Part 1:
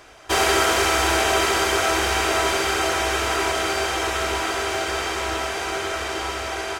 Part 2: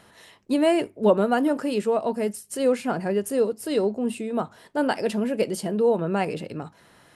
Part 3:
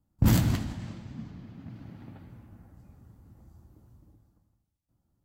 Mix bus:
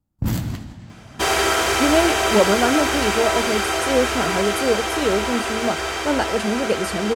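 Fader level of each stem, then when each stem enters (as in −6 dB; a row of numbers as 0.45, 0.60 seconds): 0.0, +2.0, −1.0 decibels; 0.90, 1.30, 0.00 seconds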